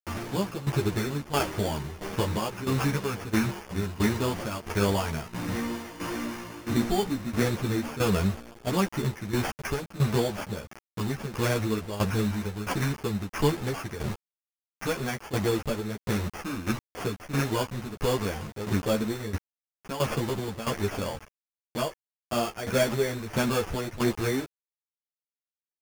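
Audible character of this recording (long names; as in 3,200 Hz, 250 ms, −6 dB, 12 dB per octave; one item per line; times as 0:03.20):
a quantiser's noise floor 6 bits, dither none
tremolo saw down 1.5 Hz, depth 80%
aliases and images of a low sample rate 3,900 Hz, jitter 0%
a shimmering, thickened sound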